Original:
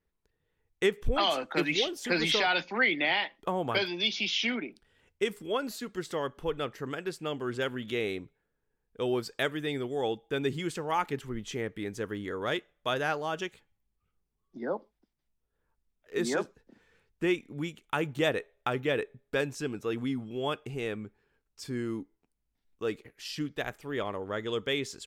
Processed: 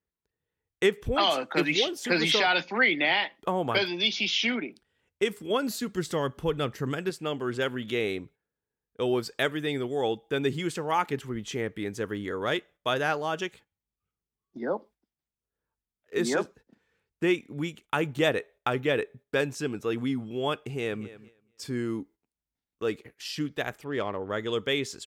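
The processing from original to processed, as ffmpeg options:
-filter_complex "[0:a]asettb=1/sr,asplit=3[a][b][c];[a]atrim=end=5.504[d];[b]atrim=start=5.5:end=7.1,asetpts=PTS-STARTPTS,afade=t=in:d=0.004:c=qsin,afade=t=out:st=1.596:d=0.004:c=qsin,bass=f=250:g=8,treble=f=4k:g=4[e];[c]atrim=start=7.096[f];[d][e]acrossfade=d=0.004:c1=hsin:c2=qsin[g];[g][f]acrossfade=d=0.004:c1=qsin:c2=hsin,asplit=2[h][i];[i]afade=t=in:st=20.65:d=0.01,afade=t=out:st=21.05:d=0.01,aecho=0:1:230|460|690:0.149624|0.0523682|0.0183289[j];[h][j]amix=inputs=2:normalize=0,asettb=1/sr,asplit=3[k][l][m];[k]atrim=end=23.844[n];[l]atrim=start=23.84:end=24.3,asetpts=PTS-STARTPTS,afade=t=in:d=0.004:c=qsin,afade=t=out:st=0.456:d=0.004:c=qsin,adynamicsmooth=sensitivity=3.5:basefreq=3.5k[o];[m]atrim=start=24.296[p];[n][o]acrossfade=d=0.004:c1=hsin:c2=qsin[q];[q][p]acrossfade=d=0.004:c1=qsin:c2=hsin,highpass=56,agate=range=-10dB:threshold=-54dB:ratio=16:detection=peak,volume=3dB"

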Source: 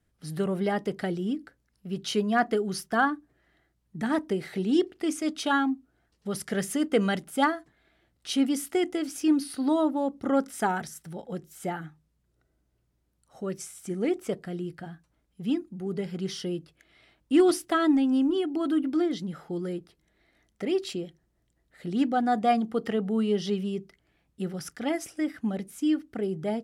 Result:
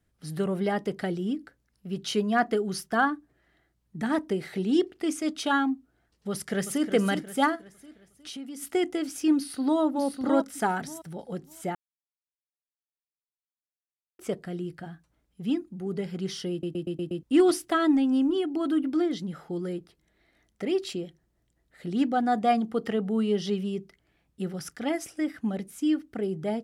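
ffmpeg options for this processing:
-filter_complex "[0:a]asplit=2[a][b];[b]afade=t=in:st=6.3:d=0.01,afade=t=out:st=6.9:d=0.01,aecho=0:1:360|720|1080|1440|1800:0.354813|0.159666|0.0718497|0.0323324|0.0145496[c];[a][c]amix=inputs=2:normalize=0,asplit=3[d][e][f];[d]afade=t=out:st=7.55:d=0.02[g];[e]acompressor=threshold=-37dB:ratio=6:attack=3.2:release=140:knee=1:detection=peak,afade=t=in:st=7.55:d=0.02,afade=t=out:st=8.61:d=0.02[h];[f]afade=t=in:st=8.61:d=0.02[i];[g][h][i]amix=inputs=3:normalize=0,asplit=2[j][k];[k]afade=t=in:st=9.35:d=0.01,afade=t=out:st=9.81:d=0.01,aecho=0:1:600|1200|1800:0.595662|0.119132|0.0238265[l];[j][l]amix=inputs=2:normalize=0,asplit=9[m][n][o][p][q][r][s][t][u];[m]atrim=end=11.75,asetpts=PTS-STARTPTS,afade=t=out:st=11.746:d=0.004:c=hsin[v];[n]atrim=start=11.75:end=14.19,asetpts=PTS-STARTPTS,volume=0[w];[o]atrim=start=14.19:end=16.632,asetpts=PTS-STARTPTS,afade=t=in:d=0.004:c=hsin[x];[p]atrim=start=16.508:end=16.632[y];[q]atrim=start=16.508:end=16.632[z];[r]atrim=start=16.508:end=16.632[aa];[s]atrim=start=16.508:end=16.632[ab];[t]atrim=start=16.508:end=16.632[ac];[u]atrim=start=17.228[ad];[v][w][x]concat=n=3:v=0:a=1[ae];[ae][y]acrossfade=d=0.004:c1=hsin:c2=hsin[af];[af][z]acrossfade=d=0.004:c1=hsin:c2=hsin[ag];[ag][aa]acrossfade=d=0.004:c1=hsin:c2=hsin[ah];[ah][ab]acrossfade=d=0.004:c1=hsin:c2=hsin[ai];[ai][ac]acrossfade=d=0.004:c1=hsin:c2=hsin[aj];[aj][ad]acrossfade=d=0.004:c1=hsin:c2=hsin"

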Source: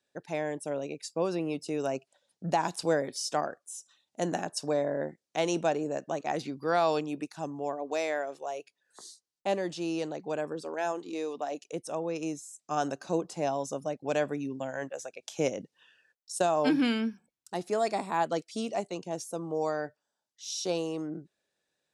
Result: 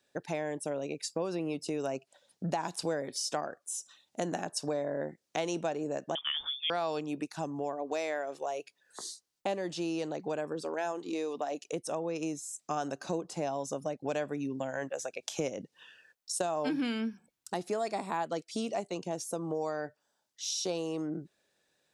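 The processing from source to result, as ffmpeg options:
-filter_complex "[0:a]asettb=1/sr,asplit=3[a][b][c];[a]atrim=end=6.154[d];[b]atrim=start=6.15:end=6.7,asetpts=PTS-STARTPTS,afade=t=in:d=0.004:c=qsin,afade=t=out:st=0.546:d=0.004:c=qsin,lowpass=f=3.1k:t=q:w=0.5098,lowpass=f=3.1k:t=q:w=0.6013,lowpass=f=3.1k:t=q:w=0.9,lowpass=f=3.1k:t=q:w=2.563,afreqshift=-3700[e];[c]atrim=start=6.696[f];[d][e]acrossfade=d=0.004:c1=hsin:c2=qsin[g];[g][f]acrossfade=d=0.004:c1=qsin:c2=hsin,acompressor=threshold=-40dB:ratio=3,volume=6.5dB"

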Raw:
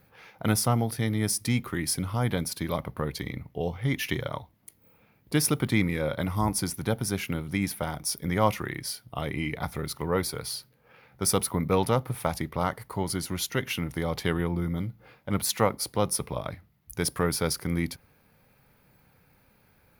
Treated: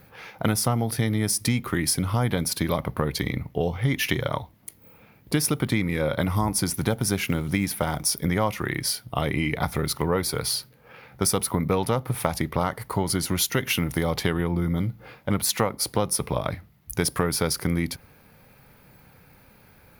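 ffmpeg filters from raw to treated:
-filter_complex "[0:a]asettb=1/sr,asplit=3[a][b][c];[a]atrim=end=6.684[d];[b]atrim=start=6.68:end=8.1,asetpts=PTS-STARTPTS,afade=t=in:d=0.004:c=qsin,afade=t=out:st=1.416:d=0.004:c=qsin,acrusher=bits=8:mode=log:mix=0:aa=0.000001[e];[c]atrim=start=8.096[f];[d][e]acrossfade=d=0.004:c1=hsin:c2=qsin[g];[g][f]acrossfade=d=0.004:c1=qsin:c2=hsin,asettb=1/sr,asplit=3[h][i][j];[h]atrim=end=13.374[k];[i]atrim=start=13.37:end=14.13,asetpts=PTS-STARTPTS,afade=t=in:d=0.004:c=qsin,afade=t=out:st=0.756:d=0.004:c=qsin,highshelf=f=7.9k:g=5.5[l];[j]atrim=start=14.126[m];[k][l]acrossfade=d=0.004:c1=hsin:c2=qsin[n];[n][m]acrossfade=d=0.004:c1=qsin:c2=hsin,acompressor=threshold=-28dB:ratio=6,volume=8.5dB"

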